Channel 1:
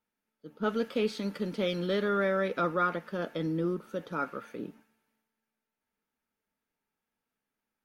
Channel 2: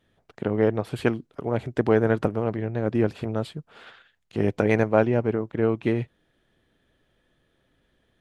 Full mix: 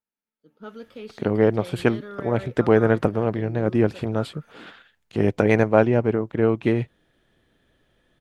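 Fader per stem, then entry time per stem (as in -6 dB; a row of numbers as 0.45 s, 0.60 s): -9.5 dB, +3.0 dB; 0.00 s, 0.80 s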